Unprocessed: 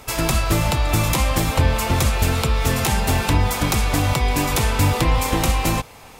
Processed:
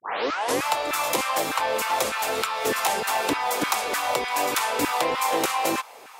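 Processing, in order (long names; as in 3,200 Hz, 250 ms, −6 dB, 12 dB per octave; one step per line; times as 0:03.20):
turntable start at the beginning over 0.65 s
auto-filter high-pass saw down 3.3 Hz 320–1,500 Hz
level −3.5 dB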